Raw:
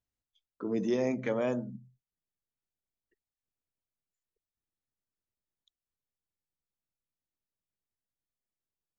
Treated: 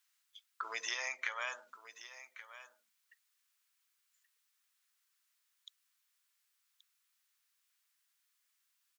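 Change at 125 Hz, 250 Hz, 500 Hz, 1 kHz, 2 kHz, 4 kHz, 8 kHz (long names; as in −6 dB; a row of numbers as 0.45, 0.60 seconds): below −40 dB, below −35 dB, −21.0 dB, +0.5 dB, +6.5 dB, +8.5 dB, can't be measured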